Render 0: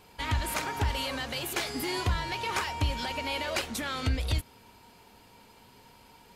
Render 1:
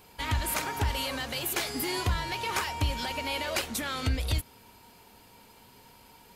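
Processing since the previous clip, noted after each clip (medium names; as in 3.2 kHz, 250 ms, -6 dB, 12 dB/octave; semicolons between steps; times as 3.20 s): treble shelf 11 kHz +10.5 dB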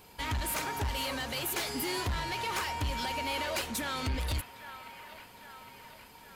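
saturation -27.5 dBFS, distortion -11 dB; feedback echo behind a band-pass 809 ms, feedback 59%, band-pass 1.4 kHz, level -10.5 dB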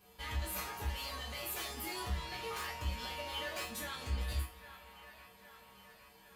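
feedback comb 65 Hz, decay 0.25 s, harmonics odd, mix 90%; reverberation, pre-delay 3 ms, DRR -2.5 dB; trim -2.5 dB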